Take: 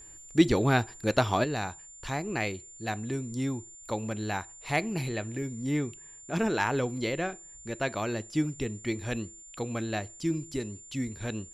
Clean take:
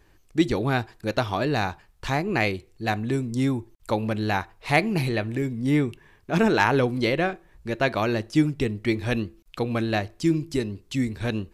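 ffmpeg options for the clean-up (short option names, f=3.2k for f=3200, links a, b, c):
-af "bandreject=f=7.2k:w=30,asetnsamples=n=441:p=0,asendcmd='1.44 volume volume 7.5dB',volume=0dB"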